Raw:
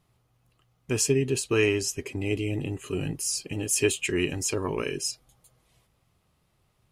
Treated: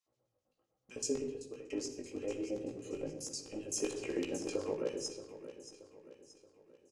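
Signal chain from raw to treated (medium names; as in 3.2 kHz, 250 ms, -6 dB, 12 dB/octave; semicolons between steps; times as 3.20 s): treble shelf 2.8 kHz -9 dB; LFO band-pass square 7.8 Hz 510–6100 Hz; chorus 1.2 Hz, delay 15 ms, depth 5.1 ms; feedback delay 627 ms, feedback 46%, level -13 dB; 1.00–1.70 s: fade out linear; simulated room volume 3500 m³, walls furnished, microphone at 2.2 m; 3.80–4.74 s: three bands compressed up and down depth 100%; trim +2.5 dB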